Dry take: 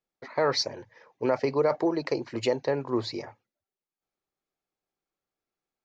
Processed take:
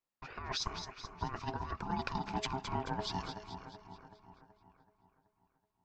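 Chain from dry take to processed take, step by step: compressor with a negative ratio -28 dBFS, ratio -0.5; two-band feedback delay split 1.7 kHz, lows 378 ms, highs 216 ms, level -8.5 dB; ring modulator 530 Hz; trim -5 dB

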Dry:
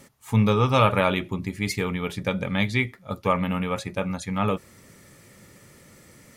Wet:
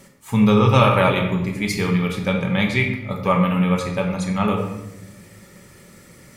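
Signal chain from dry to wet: simulated room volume 440 m³, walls mixed, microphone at 1.1 m; trim +2 dB

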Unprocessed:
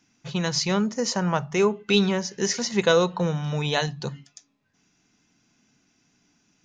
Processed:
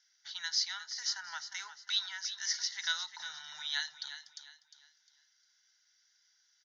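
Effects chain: inverse Chebyshev high-pass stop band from 590 Hz, stop band 40 dB; peaking EQ 6.1 kHz +6.5 dB 1.1 oct; in parallel at -1 dB: compression, threshold -36 dBFS, peak gain reduction 18.5 dB; on the sum: static phaser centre 1.7 kHz, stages 8; on a send: feedback delay 354 ms, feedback 34%, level -11.5 dB; on the sum: resampled via 22.05 kHz; trim -8.5 dB

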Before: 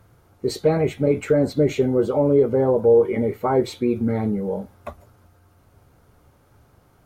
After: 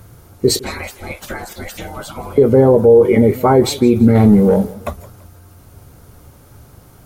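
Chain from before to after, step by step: treble shelf 4.1 kHz +12 dB; 0.59–2.38 s: spectral gate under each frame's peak -20 dB weak; 4.15–4.74 s: waveshaping leveller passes 1; bass shelf 390 Hz +6.5 dB; loudness maximiser +8.5 dB; modulated delay 166 ms, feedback 34%, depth 154 cents, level -20 dB; trim -1 dB

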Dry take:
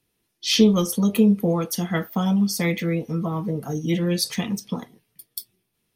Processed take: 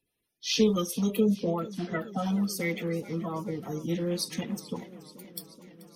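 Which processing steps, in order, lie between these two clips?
coarse spectral quantiser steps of 30 dB; 1.20–2.17 s: low-pass 1.5 kHz -> 3.4 kHz 12 dB/octave; modulated delay 431 ms, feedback 76%, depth 112 cents, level -18.5 dB; trim -7 dB

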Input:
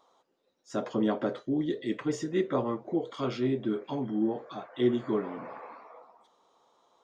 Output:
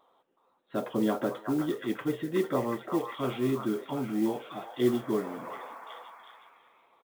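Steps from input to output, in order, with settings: repeats whose band climbs or falls 368 ms, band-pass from 1.1 kHz, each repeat 0.7 oct, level -2 dB; resampled via 8 kHz; modulation noise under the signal 24 dB

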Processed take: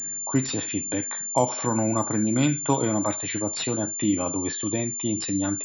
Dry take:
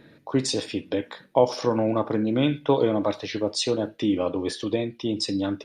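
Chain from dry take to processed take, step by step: peaking EQ 470 Hz -11.5 dB 0.8 oct; class-D stage that switches slowly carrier 7.2 kHz; trim +3 dB

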